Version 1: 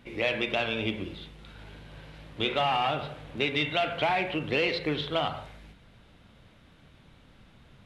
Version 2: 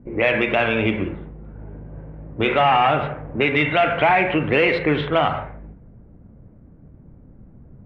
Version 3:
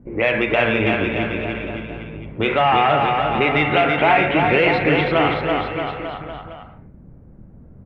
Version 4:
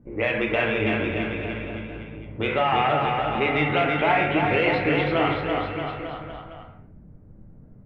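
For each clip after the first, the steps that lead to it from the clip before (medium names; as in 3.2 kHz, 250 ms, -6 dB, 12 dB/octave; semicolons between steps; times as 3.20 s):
level-controlled noise filter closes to 330 Hz, open at -24 dBFS; resonant high shelf 3 kHz -12.5 dB, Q 1.5; in parallel at 0 dB: peak limiter -21.5 dBFS, peak gain reduction 7.5 dB; on the sum: trim +5.5 dB
bouncing-ball echo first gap 330 ms, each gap 0.9×, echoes 5
simulated room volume 73 m³, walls mixed, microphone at 0.42 m; trim -6.5 dB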